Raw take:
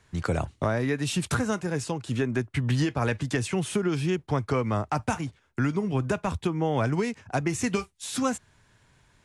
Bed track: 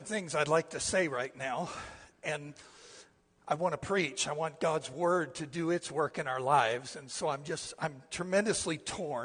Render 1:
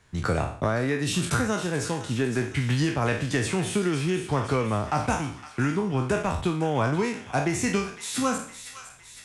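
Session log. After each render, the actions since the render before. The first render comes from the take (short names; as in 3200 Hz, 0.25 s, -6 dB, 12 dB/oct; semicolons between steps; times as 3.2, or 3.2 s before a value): spectral trails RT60 0.50 s; thin delay 0.51 s, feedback 58%, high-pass 1600 Hz, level -10 dB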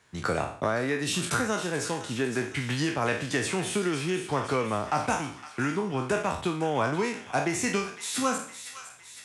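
HPF 280 Hz 6 dB/oct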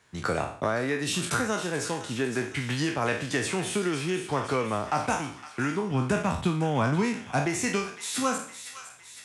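5.91–7.46 resonant low shelf 280 Hz +6 dB, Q 1.5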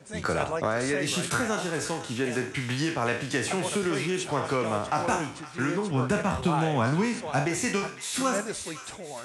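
add bed track -3.5 dB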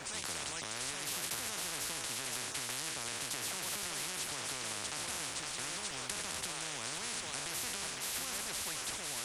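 limiter -20 dBFS, peak gain reduction 6.5 dB; spectral compressor 10:1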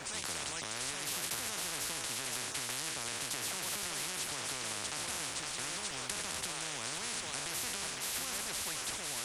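gain +1 dB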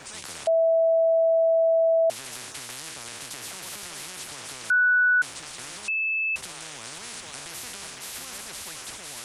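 0.47–2.1 bleep 656 Hz -17 dBFS; 4.7–5.22 bleep 1480 Hz -16.5 dBFS; 5.88–6.36 bleep 2620 Hz -23 dBFS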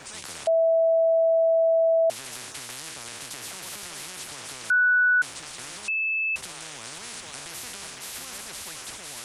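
nothing audible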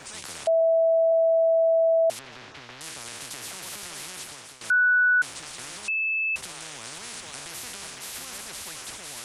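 0.61–1.12 LPF 2400 Hz; 2.19–2.81 air absorption 220 m; 4.18–4.61 fade out, to -12.5 dB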